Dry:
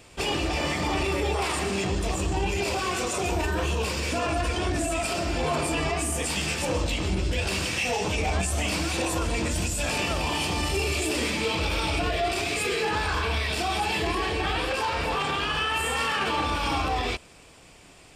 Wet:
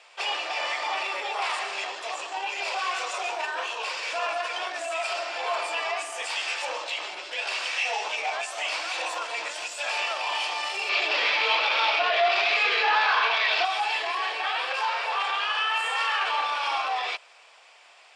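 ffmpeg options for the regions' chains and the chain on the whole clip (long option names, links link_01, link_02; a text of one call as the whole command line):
ffmpeg -i in.wav -filter_complex "[0:a]asettb=1/sr,asplit=3[link_01][link_02][link_03];[link_01]atrim=end=10.894[link_04];[link_02]atrim=start=10.89:end=13.65,asetpts=PTS-STARTPTS,afade=type=in:duration=0.004:curve=qsin,afade=type=out:start_time=2.756:duration=0.004:curve=qsin,lowpass=frequency=4800:width=0.5412,lowpass=frequency=4800:width=1.3066,aeval=exprs='0.188*sin(PI/2*1.41*val(0)/0.188)':channel_layout=same[link_05];[link_03]atrim=start=13.646[link_06];[link_04][link_05]acrossfade=duration=0.004:curve1=hsin:curve2=qsin[link_07];[link_07][link_06]acrossfade=duration=0.004:curve1=qsin:curve2=hsin,highpass=frequency=660:width=0.5412,highpass=frequency=660:width=1.3066,acontrast=26,lowpass=4700,volume=-3.5dB" out.wav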